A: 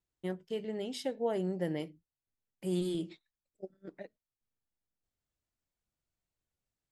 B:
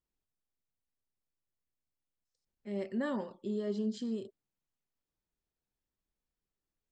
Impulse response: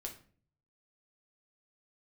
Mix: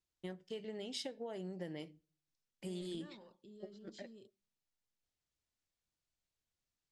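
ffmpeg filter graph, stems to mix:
-filter_complex "[0:a]acompressor=threshold=0.0158:ratio=6,volume=0.531,asplit=2[s0][s1];[s1]volume=0.188[s2];[1:a]alimiter=level_in=3.98:limit=0.0631:level=0:latency=1:release=33,volume=0.251,volume=0.178,asplit=2[s3][s4];[s4]volume=0.0944[s5];[2:a]atrim=start_sample=2205[s6];[s2][s5]amix=inputs=2:normalize=0[s7];[s7][s6]afir=irnorm=-1:irlink=0[s8];[s0][s3][s8]amix=inputs=3:normalize=0,lowpass=6300,highshelf=f=3000:g=10.5"

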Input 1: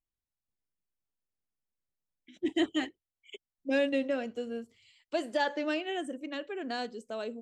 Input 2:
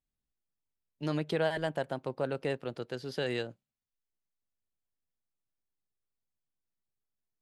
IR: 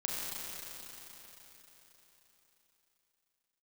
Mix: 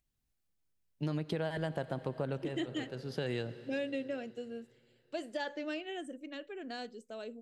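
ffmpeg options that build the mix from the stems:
-filter_complex "[0:a]agate=range=0.0224:threshold=0.00224:ratio=3:detection=peak,equalizer=f=1000:w=2.1:g=-5,acompressor=mode=upward:threshold=0.00398:ratio=2.5,volume=0.501,asplit=2[s0][s1];[1:a]equalizer=f=85:w=0.39:g=8.5,volume=0.841,asplit=2[s2][s3];[s3]volume=0.106[s4];[s1]apad=whole_len=327194[s5];[s2][s5]sidechaincompress=threshold=0.00708:ratio=8:attack=16:release=585[s6];[2:a]atrim=start_sample=2205[s7];[s4][s7]afir=irnorm=-1:irlink=0[s8];[s0][s6][s8]amix=inputs=3:normalize=0,acompressor=threshold=0.0282:ratio=6"

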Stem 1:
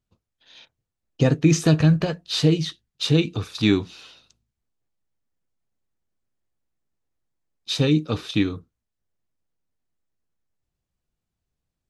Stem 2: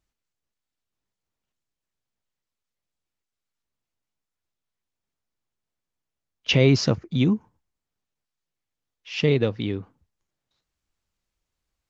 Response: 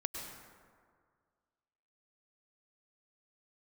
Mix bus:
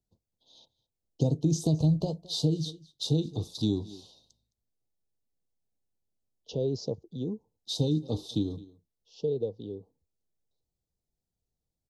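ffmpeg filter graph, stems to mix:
-filter_complex "[0:a]volume=0.562,asplit=2[s0][s1];[s1]volume=0.0708[s2];[1:a]equalizer=f=450:t=o:w=0.54:g=12,volume=0.178[s3];[s2]aecho=0:1:214:1[s4];[s0][s3][s4]amix=inputs=3:normalize=0,acrossover=split=150[s5][s6];[s6]acompressor=threshold=0.0501:ratio=4[s7];[s5][s7]amix=inputs=2:normalize=0,asuperstop=centerf=1800:order=8:qfactor=0.65"

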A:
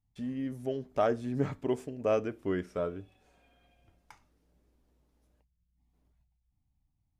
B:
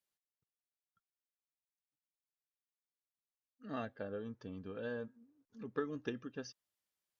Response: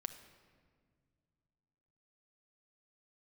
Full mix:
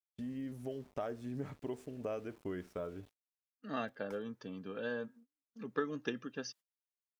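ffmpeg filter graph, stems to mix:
-filter_complex "[0:a]acompressor=threshold=0.0158:ratio=3,aeval=exprs='val(0)*gte(abs(val(0)),0.0015)':c=same,volume=0.708[s0];[1:a]highpass=f=140:w=0.5412,highpass=f=140:w=1.3066,equalizer=f=310:w=0.33:g=-4.5,acontrast=58,volume=1[s1];[s0][s1]amix=inputs=2:normalize=0,agate=range=0.0224:threshold=0.00141:ratio=16:detection=peak"

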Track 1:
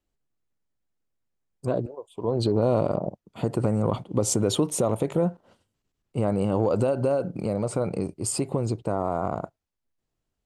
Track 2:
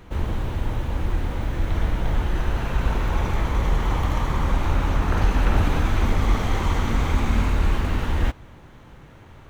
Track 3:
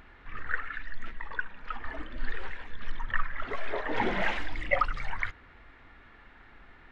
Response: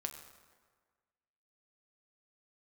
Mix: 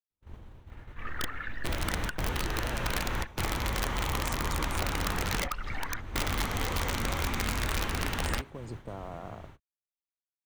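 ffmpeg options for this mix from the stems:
-filter_complex "[0:a]volume=0.282,asplit=2[s0][s1];[1:a]equalizer=f=86:t=o:w=0.97:g=2,adelay=100,volume=1.12[s2];[2:a]acontrast=57,adelay=700,volume=0.596,asplit=3[s3][s4][s5];[s3]atrim=end=3.27,asetpts=PTS-STARTPTS,afade=t=out:st=3.266:d=0.004:c=hsin[s6];[s4]atrim=start=3.27:end=5.13,asetpts=PTS-STARTPTS,volume=0[s7];[s5]atrim=start=5.13,asetpts=PTS-STARTPTS,afade=t=in:d=0.004:c=hsin[s8];[s6][s7][s8]concat=n=3:v=0:a=1[s9];[s1]apad=whole_len=423063[s10];[s2][s10]sidechaingate=range=0.1:threshold=0.00178:ratio=16:detection=peak[s11];[s0][s11][s9]amix=inputs=3:normalize=0,acrossover=split=130|1200|2800[s12][s13][s14][s15];[s12]acompressor=threshold=0.0224:ratio=4[s16];[s13]acompressor=threshold=0.0141:ratio=4[s17];[s14]acompressor=threshold=0.0126:ratio=4[s18];[s15]acompressor=threshold=0.00501:ratio=4[s19];[s16][s17][s18][s19]amix=inputs=4:normalize=0,agate=range=0.0224:threshold=0.0158:ratio=3:detection=peak,aeval=exprs='(mod(13.3*val(0)+1,2)-1)/13.3':c=same"

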